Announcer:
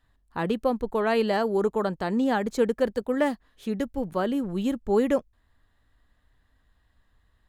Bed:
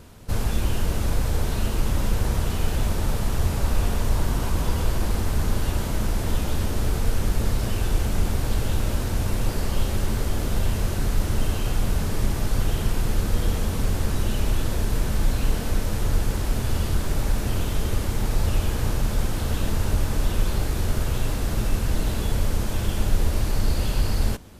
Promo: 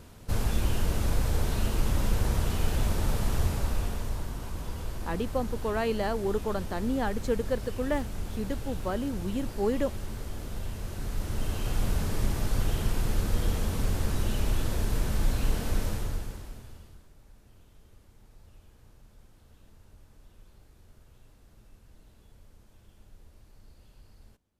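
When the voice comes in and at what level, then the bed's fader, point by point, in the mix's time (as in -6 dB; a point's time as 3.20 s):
4.70 s, -5.5 dB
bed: 3.38 s -3.5 dB
4.33 s -12.5 dB
10.80 s -12.5 dB
11.82 s -4.5 dB
15.87 s -4.5 dB
17.12 s -32.5 dB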